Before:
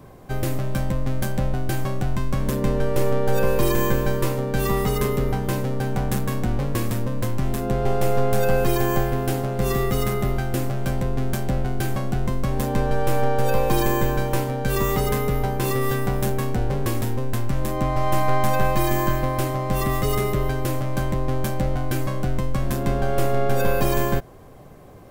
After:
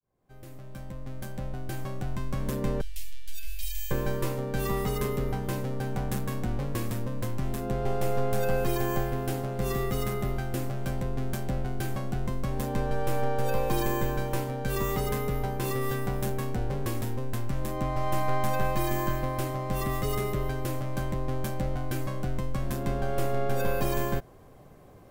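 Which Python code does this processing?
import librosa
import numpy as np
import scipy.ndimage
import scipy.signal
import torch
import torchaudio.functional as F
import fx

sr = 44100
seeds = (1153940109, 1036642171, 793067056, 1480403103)

y = fx.fade_in_head(x, sr, length_s=2.52)
y = fx.cheby2_bandstop(y, sr, low_hz=170.0, high_hz=750.0, order=4, stop_db=70, at=(2.81, 3.91))
y = y * 10.0 ** (-7.0 / 20.0)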